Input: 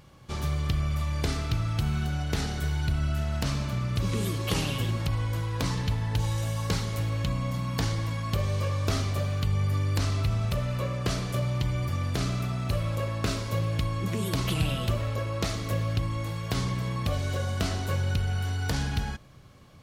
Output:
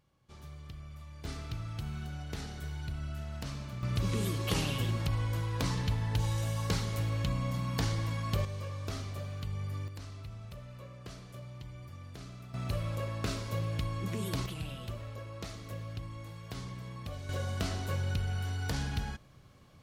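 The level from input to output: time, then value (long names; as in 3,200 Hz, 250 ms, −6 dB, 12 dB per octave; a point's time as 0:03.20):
−19 dB
from 0:01.25 −11 dB
from 0:03.83 −3.5 dB
from 0:08.45 −11 dB
from 0:09.88 −18 dB
from 0:12.54 −6 dB
from 0:14.46 −13 dB
from 0:17.29 −5.5 dB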